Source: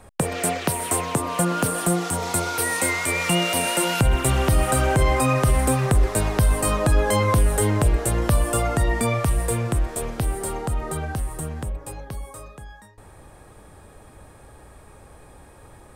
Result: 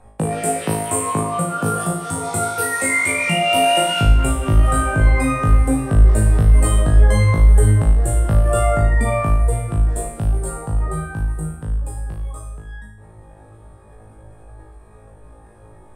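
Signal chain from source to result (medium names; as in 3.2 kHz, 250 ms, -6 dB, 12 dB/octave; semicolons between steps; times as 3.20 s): spectral contrast enhancement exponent 1.5; flutter echo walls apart 3.2 m, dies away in 0.71 s; trim -1 dB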